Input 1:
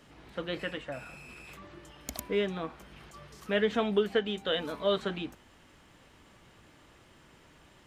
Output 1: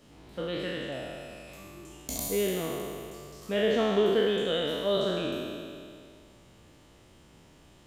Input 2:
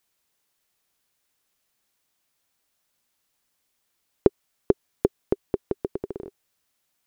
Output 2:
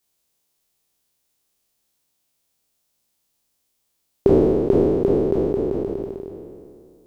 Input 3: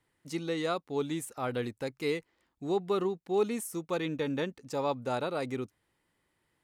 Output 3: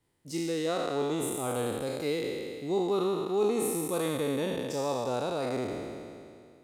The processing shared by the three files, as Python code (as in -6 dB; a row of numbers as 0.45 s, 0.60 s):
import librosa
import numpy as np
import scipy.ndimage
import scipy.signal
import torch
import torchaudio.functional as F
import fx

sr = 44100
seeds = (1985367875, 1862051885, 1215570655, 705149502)

y = fx.spec_trails(x, sr, decay_s=2.3)
y = fx.peak_eq(y, sr, hz=1600.0, db=-8.0, octaves=1.7)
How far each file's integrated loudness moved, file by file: +3.0 LU, +9.0 LU, +2.5 LU